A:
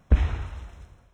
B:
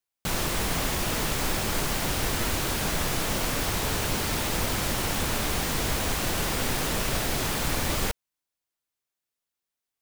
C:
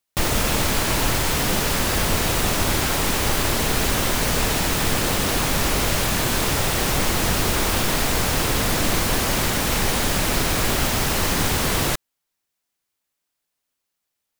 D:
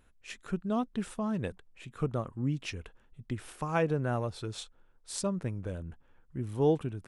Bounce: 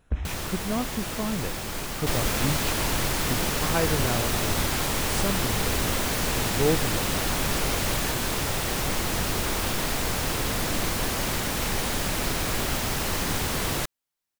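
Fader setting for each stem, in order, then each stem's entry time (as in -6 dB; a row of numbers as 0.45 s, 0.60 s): -9.0 dB, -5.0 dB, -6.0 dB, +2.0 dB; 0.00 s, 0.00 s, 1.90 s, 0.00 s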